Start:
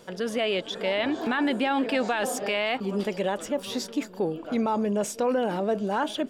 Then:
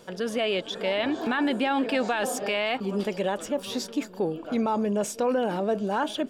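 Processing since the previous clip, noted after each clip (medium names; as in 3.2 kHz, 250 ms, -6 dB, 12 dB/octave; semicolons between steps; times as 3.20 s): band-stop 2 kHz, Q 21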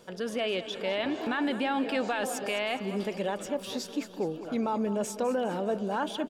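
feedback delay 206 ms, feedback 50%, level -13.5 dB; trim -4 dB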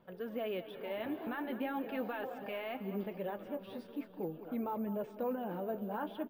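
flange 0.41 Hz, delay 0.9 ms, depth 9.7 ms, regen -38%; careless resampling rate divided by 3×, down filtered, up zero stuff; distance through air 490 m; trim -3 dB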